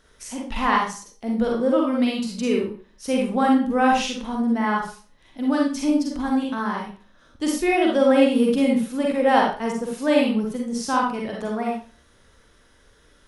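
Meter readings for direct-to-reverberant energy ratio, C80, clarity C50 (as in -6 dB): -2.0 dB, 7.5 dB, 1.0 dB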